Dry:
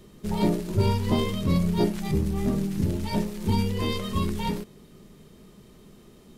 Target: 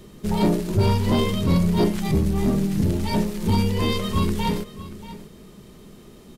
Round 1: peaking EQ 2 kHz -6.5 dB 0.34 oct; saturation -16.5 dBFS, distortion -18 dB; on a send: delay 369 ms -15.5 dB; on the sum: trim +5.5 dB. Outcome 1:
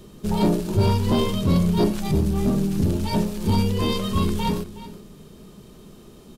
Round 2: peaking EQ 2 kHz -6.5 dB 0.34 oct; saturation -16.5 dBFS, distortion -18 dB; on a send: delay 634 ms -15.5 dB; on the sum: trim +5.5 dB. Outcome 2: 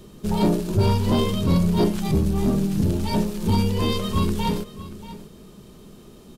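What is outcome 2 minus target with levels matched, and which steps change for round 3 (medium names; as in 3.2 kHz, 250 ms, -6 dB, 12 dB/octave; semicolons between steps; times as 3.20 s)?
2 kHz band -3.0 dB
remove: peaking EQ 2 kHz -6.5 dB 0.34 oct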